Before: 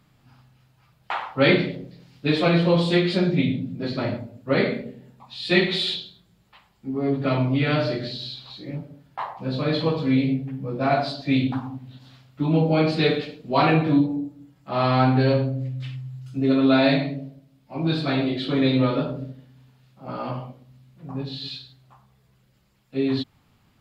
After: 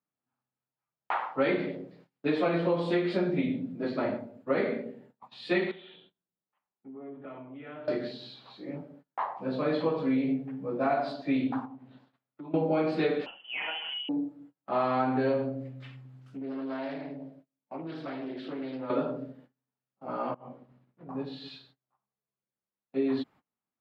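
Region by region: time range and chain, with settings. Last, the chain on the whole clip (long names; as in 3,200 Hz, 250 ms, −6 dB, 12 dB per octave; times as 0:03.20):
0:05.71–0:07.88: elliptic low-pass filter 3,300 Hz, stop band 50 dB + downward compressor 3 to 1, threshold −43 dBFS + one half of a high-frequency compander decoder only
0:11.65–0:12.54: high-pass filter 79 Hz 6 dB per octave + high-shelf EQ 4,900 Hz −9 dB + downward compressor 4 to 1, threshold −38 dBFS
0:13.26–0:14.09: downward compressor 4 to 1, threshold −25 dBFS + voice inversion scrambler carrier 3,200 Hz
0:16.05–0:18.90: downward compressor 4 to 1, threshold −32 dBFS + highs frequency-modulated by the lows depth 0.27 ms
0:20.34–0:21.09: low-pass filter 2,100 Hz 6 dB per octave + compressor whose output falls as the input rises −39 dBFS, ratio −0.5
whole clip: noise gate −47 dBFS, range −27 dB; three-way crossover with the lows and the highs turned down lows −20 dB, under 210 Hz, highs −14 dB, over 2,100 Hz; downward compressor, threshold −22 dBFS; level −1 dB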